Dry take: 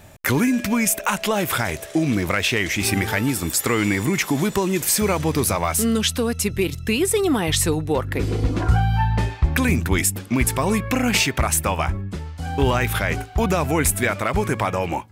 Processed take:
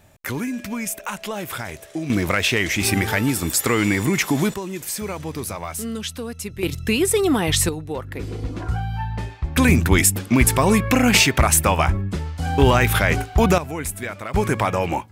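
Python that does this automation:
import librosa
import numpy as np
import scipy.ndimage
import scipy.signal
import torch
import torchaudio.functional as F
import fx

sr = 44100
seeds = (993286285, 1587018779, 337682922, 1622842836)

y = fx.gain(x, sr, db=fx.steps((0.0, -7.5), (2.1, 1.0), (4.54, -8.5), (6.63, 1.0), (7.69, -7.0), (9.57, 4.0), (13.58, -8.5), (14.34, 1.5)))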